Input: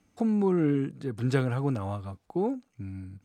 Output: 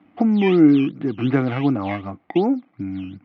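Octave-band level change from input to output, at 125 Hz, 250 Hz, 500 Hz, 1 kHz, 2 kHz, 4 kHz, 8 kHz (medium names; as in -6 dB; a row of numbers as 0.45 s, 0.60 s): +4.0 dB, +11.0 dB, +7.0 dB, +9.0 dB, +10.0 dB, +12.5 dB, no reading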